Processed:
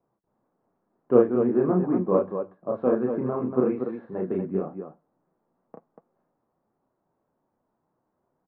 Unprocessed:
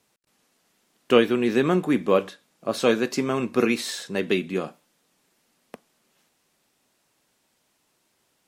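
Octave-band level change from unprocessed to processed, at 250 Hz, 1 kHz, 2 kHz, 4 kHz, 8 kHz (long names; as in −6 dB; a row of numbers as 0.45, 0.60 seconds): −1.0 dB, −4.0 dB, −18.0 dB, below −35 dB, below −40 dB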